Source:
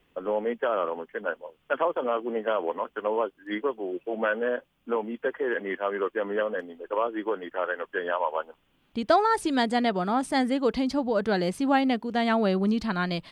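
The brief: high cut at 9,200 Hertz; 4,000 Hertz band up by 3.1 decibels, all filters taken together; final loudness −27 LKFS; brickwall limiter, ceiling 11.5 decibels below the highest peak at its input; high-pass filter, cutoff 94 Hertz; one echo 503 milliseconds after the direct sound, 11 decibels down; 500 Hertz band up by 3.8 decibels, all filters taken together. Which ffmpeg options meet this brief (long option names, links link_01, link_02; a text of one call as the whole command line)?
ffmpeg -i in.wav -af "highpass=94,lowpass=9200,equalizer=frequency=500:width_type=o:gain=4.5,equalizer=frequency=4000:width_type=o:gain=4,alimiter=limit=-18.5dB:level=0:latency=1,aecho=1:1:503:0.282,volume=1dB" out.wav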